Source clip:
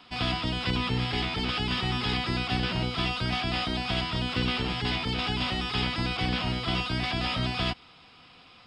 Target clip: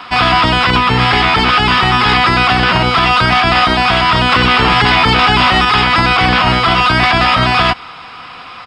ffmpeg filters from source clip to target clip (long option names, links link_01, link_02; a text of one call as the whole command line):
ffmpeg -i in.wav -filter_complex "[0:a]firequalizer=gain_entry='entry(240,0);entry(1100,13);entry(3200,2)':delay=0.05:min_phase=1,asettb=1/sr,asplit=3[link_01][link_02][link_03];[link_01]atrim=end=4.324[link_04];[link_02]atrim=start=4.32:end=5.65,asetpts=PTS-STARTPTS,afade=type=in:duration=0.004:curve=qsin,afade=type=out:start_time=1.326:duration=0.004:curve=qsin,acontrast=39[link_05];[link_03]atrim=start=5.646[link_06];[link_04][link_05]acrossfade=duration=0.004:curve1=hsin:curve2=qsin[link_07];[link_07][link_06]acrossfade=duration=0.004:curve1=qsin:curve2=hsin,alimiter=level_in=16dB:limit=-1dB:release=50:level=0:latency=1,volume=-1dB" out.wav